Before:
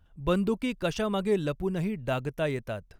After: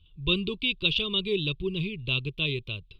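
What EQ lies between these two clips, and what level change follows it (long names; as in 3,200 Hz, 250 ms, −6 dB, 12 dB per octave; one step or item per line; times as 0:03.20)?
drawn EQ curve 150 Hz 0 dB, 230 Hz −10 dB, 380 Hz −1 dB, 740 Hz −27 dB, 1,100 Hz −7 dB, 1,700 Hz −28 dB, 2,500 Hz +10 dB, 3,700 Hz +15 dB, 6,100 Hz −19 dB
+2.0 dB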